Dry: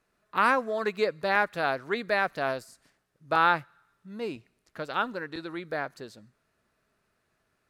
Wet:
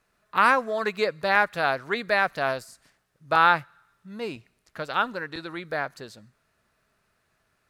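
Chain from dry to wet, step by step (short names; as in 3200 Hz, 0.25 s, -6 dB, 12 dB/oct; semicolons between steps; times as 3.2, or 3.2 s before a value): bell 320 Hz -5 dB 1.5 oct; gain +4.5 dB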